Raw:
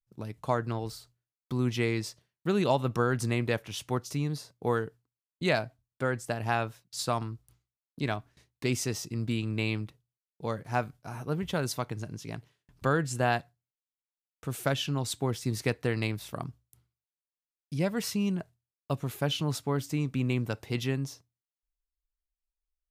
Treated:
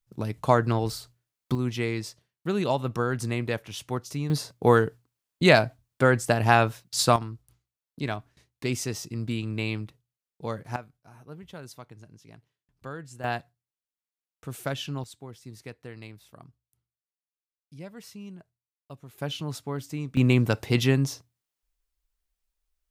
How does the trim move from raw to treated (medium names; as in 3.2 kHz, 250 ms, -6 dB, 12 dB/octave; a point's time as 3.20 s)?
+8 dB
from 1.55 s 0 dB
from 4.30 s +9.5 dB
from 7.16 s +0.5 dB
from 10.76 s -12 dB
from 13.24 s -2.5 dB
from 15.04 s -13 dB
from 19.18 s -3 dB
from 20.17 s +8.5 dB